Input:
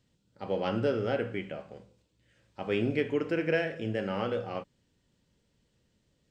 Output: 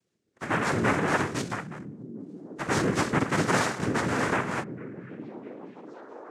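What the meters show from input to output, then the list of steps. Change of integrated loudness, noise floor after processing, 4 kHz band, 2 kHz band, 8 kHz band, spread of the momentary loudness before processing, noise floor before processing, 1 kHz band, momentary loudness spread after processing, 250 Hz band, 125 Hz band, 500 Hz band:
+4.5 dB, −75 dBFS, +6.0 dB, +9.0 dB, can't be measured, 12 LU, −74 dBFS, +11.0 dB, 17 LU, +5.0 dB, +6.0 dB, −0.5 dB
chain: leveller curve on the samples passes 2
cochlear-implant simulation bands 3
echo through a band-pass that steps 655 ms, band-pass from 160 Hz, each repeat 0.7 octaves, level −8 dB
level −1.5 dB

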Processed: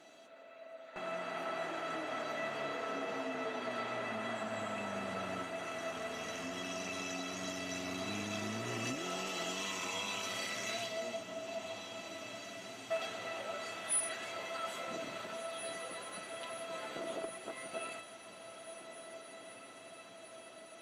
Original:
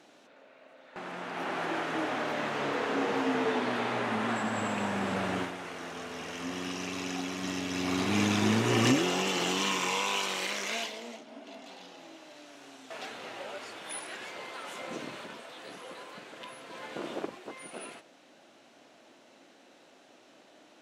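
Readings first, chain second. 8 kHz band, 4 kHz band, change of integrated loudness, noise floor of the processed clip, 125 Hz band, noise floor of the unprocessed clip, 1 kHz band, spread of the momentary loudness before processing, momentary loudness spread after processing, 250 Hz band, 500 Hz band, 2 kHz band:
−2.5 dB, −7.0 dB, −8.0 dB, −54 dBFS, −12.5 dB, −59 dBFS, −7.0 dB, 19 LU, 13 LU, −12.0 dB, −5.0 dB, −6.5 dB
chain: notch filter 5,200 Hz, Q 12
dynamic equaliser 5,300 Hz, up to +6 dB, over −59 dBFS, Q 7
downward compressor 3 to 1, threshold −38 dBFS, peak gain reduction 13.5 dB
tuned comb filter 660 Hz, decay 0.15 s, harmonics all, mix 90%
feedback delay with all-pass diffusion 1,939 ms, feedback 67%, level −12 dB
level +13.5 dB

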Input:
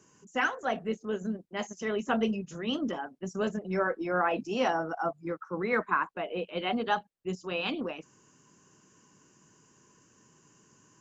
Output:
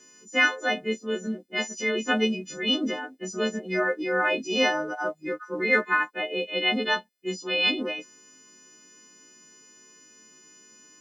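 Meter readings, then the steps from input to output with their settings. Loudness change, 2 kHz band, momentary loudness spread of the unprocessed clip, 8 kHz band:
+6.0 dB, +9.5 dB, 8 LU, can't be measured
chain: every partial snapped to a pitch grid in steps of 3 semitones
octave-band graphic EQ 125/250/500/1,000/2,000/4,000 Hz −10/+9/+6/−4/+9/+7 dB
level −2.5 dB

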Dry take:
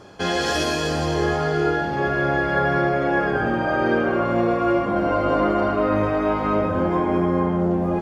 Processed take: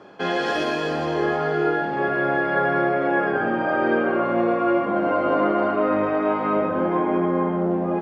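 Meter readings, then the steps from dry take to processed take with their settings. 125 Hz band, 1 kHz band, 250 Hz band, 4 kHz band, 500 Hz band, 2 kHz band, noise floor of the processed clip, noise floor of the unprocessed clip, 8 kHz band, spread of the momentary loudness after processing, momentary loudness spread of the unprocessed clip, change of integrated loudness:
−6.5 dB, 0.0 dB, −1.0 dB, −5.5 dB, 0.0 dB, −0.5 dB, −25 dBFS, −24 dBFS, can't be measured, 3 LU, 2 LU, −0.5 dB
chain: three-way crossover with the lows and the highs turned down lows −22 dB, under 160 Hz, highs −16 dB, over 3,400 Hz

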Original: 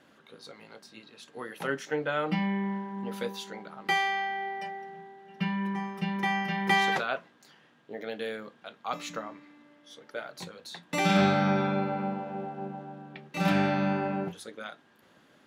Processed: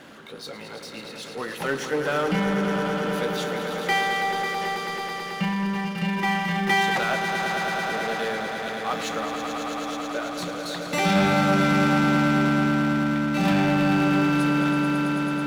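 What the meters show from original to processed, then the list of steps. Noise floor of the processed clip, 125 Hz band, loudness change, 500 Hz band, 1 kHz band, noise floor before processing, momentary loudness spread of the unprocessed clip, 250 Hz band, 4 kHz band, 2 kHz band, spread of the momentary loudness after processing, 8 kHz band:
−39 dBFS, +7.5 dB, +6.5 dB, +6.5 dB, +6.5 dB, −62 dBFS, 20 LU, +8.5 dB, +7.0 dB, +7.5 dB, 11 LU, +9.5 dB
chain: echo that builds up and dies away 109 ms, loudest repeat 5, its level −9 dB
power curve on the samples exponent 0.7

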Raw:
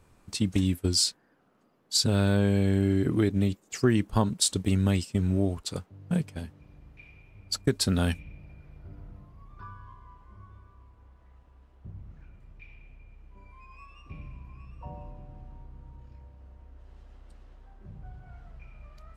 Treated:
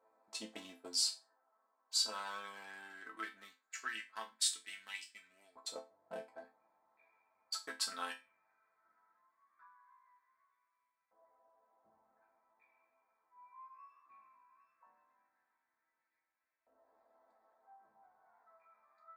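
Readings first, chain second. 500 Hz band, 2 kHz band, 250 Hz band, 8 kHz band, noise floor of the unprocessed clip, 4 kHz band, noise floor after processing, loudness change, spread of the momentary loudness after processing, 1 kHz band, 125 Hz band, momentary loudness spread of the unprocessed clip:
−21.5 dB, −7.0 dB, −32.5 dB, −8.5 dB, −63 dBFS, −8.0 dB, below −85 dBFS, −13.5 dB, 22 LU, −8.0 dB, below −40 dB, 21 LU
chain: adaptive Wiener filter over 15 samples
auto-filter high-pass saw up 0.18 Hz 610–2,400 Hz
resonators tuned to a chord A3 minor, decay 0.25 s
level +8 dB

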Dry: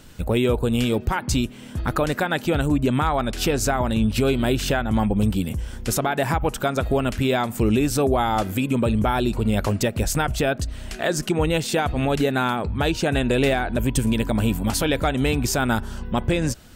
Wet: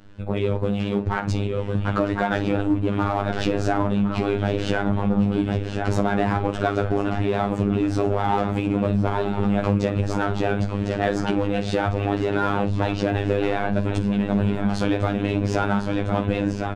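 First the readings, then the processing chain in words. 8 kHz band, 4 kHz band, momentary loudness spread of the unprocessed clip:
below −10 dB, −7.0 dB, 4 LU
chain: head-to-tape spacing loss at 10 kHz 29 dB
on a send: repeating echo 1,053 ms, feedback 52%, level −10 dB
on the sum: automatic gain control gain up to 11.5 dB
parametric band 91 Hz −2.5 dB 1.4 octaves
multi-voice chorus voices 2, 1 Hz, delay 16 ms, depth 3 ms
in parallel at −4 dB: hard clipping −19 dBFS, distortion −7 dB
on the sum: double-tracking delay 49 ms −12 dB
pitch vibrato 7.1 Hz 46 cents
downward compressor, threshold −16 dBFS, peak gain reduction 8.5 dB
phases set to zero 101 Hz

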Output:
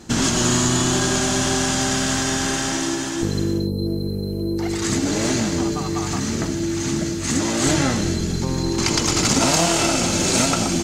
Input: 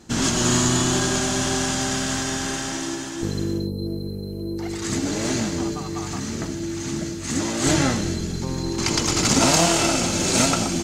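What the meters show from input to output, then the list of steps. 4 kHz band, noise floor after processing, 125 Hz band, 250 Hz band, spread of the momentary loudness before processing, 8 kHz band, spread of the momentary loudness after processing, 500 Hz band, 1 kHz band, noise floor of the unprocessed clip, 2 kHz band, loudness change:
+2.0 dB, −25 dBFS, +2.5 dB, +2.5 dB, 11 LU, +2.0 dB, 6 LU, +2.0 dB, +1.5 dB, −31 dBFS, +2.0 dB, +2.0 dB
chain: downward compressor 2 to 1, threshold −25 dBFS, peak gain reduction 6.5 dB
level +6 dB

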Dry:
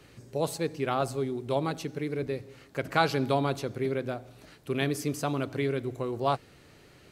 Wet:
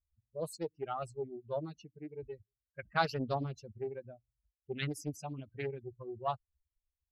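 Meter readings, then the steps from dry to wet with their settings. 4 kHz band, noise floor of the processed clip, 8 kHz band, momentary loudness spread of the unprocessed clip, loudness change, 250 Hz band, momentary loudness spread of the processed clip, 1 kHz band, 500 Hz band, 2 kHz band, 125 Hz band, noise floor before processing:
−9.0 dB, below −85 dBFS, −10.5 dB, 10 LU, −9.0 dB, −11.0 dB, 16 LU, −7.5 dB, −9.5 dB, −7.5 dB, −9.0 dB, −56 dBFS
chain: spectral dynamics exaggerated over time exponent 3
low-pass that shuts in the quiet parts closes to 970 Hz, open at −31 dBFS
highs frequency-modulated by the lows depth 0.43 ms
level −2.5 dB

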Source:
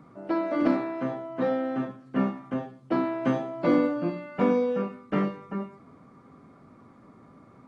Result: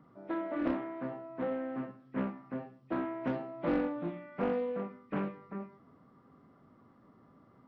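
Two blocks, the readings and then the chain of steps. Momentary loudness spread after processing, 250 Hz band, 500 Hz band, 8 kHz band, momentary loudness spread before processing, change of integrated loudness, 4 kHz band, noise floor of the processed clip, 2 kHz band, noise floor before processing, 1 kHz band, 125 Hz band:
10 LU, −9.0 dB, −8.5 dB, can't be measured, 10 LU, −8.5 dB, below −10 dB, −63 dBFS, −7.5 dB, −54 dBFS, −8.5 dB, −8.5 dB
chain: hearing-aid frequency compression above 1,800 Hz 1.5 to 1
highs frequency-modulated by the lows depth 0.42 ms
level −8.5 dB

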